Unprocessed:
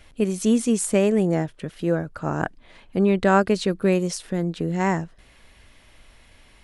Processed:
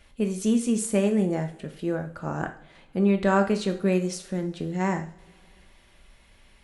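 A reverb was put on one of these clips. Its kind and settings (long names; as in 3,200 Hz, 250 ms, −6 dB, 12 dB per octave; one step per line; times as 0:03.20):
coupled-rooms reverb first 0.44 s, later 3.1 s, from −27 dB, DRR 5 dB
level −5.5 dB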